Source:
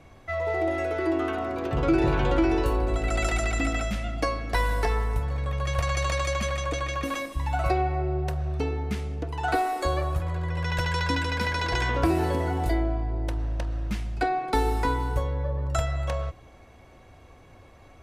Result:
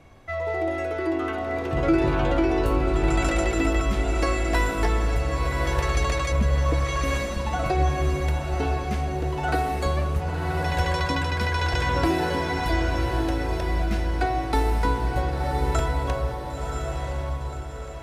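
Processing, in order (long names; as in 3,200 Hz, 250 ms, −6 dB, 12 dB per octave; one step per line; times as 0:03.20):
0:06.32–0:06.85: tilt shelving filter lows +9.5 dB, about 670 Hz
feedback delay with all-pass diffusion 1,023 ms, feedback 48%, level −3 dB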